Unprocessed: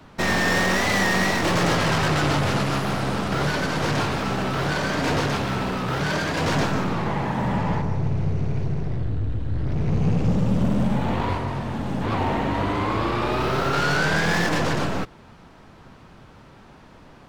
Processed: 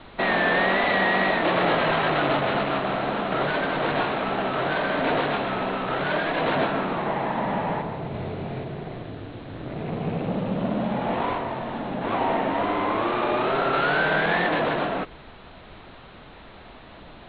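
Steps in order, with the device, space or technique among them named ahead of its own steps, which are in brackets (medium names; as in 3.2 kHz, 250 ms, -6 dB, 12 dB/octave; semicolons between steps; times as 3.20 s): horn gramophone (band-pass 240–4000 Hz; peaking EQ 670 Hz +6 dB 0.34 oct; wow and flutter; pink noise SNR 20 dB); steep low-pass 4.1 kHz 96 dB/octave; 8.12–8.64 s: doubling 23 ms -3 dB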